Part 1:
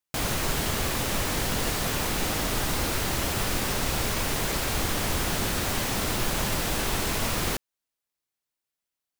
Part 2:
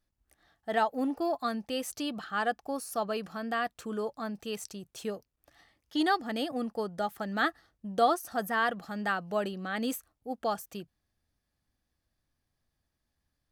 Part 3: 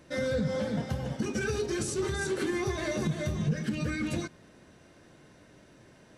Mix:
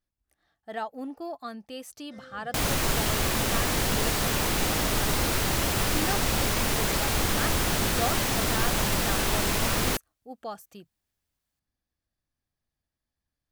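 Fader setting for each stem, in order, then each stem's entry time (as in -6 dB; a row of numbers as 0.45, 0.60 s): +1.5, -6.0, -20.0 dB; 2.40, 0.00, 2.00 s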